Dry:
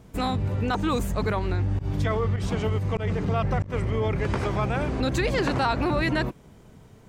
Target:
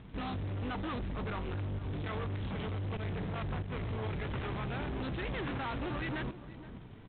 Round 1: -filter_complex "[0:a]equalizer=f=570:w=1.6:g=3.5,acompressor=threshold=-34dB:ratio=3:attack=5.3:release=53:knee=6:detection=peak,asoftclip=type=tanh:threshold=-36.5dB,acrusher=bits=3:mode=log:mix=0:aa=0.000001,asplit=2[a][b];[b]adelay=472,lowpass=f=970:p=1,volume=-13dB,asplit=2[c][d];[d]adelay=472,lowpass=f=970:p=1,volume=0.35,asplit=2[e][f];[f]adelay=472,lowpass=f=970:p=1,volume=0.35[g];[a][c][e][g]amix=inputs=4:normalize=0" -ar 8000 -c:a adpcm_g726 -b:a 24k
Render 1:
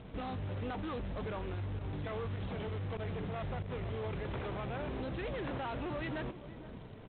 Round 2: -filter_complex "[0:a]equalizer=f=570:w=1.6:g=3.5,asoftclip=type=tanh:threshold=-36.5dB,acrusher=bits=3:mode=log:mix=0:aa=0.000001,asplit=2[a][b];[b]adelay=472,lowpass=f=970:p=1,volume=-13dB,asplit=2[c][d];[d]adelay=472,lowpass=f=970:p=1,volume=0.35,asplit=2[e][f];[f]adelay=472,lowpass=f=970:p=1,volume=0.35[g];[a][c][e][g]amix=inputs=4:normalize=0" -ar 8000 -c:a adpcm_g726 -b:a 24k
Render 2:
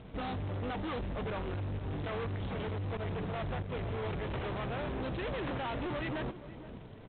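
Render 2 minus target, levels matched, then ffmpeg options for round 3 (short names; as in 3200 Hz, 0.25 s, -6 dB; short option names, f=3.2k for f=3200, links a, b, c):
500 Hz band +3.5 dB
-filter_complex "[0:a]equalizer=f=570:w=1.6:g=-6.5,asoftclip=type=tanh:threshold=-36.5dB,acrusher=bits=3:mode=log:mix=0:aa=0.000001,asplit=2[a][b];[b]adelay=472,lowpass=f=970:p=1,volume=-13dB,asplit=2[c][d];[d]adelay=472,lowpass=f=970:p=1,volume=0.35,asplit=2[e][f];[f]adelay=472,lowpass=f=970:p=1,volume=0.35[g];[a][c][e][g]amix=inputs=4:normalize=0" -ar 8000 -c:a adpcm_g726 -b:a 24k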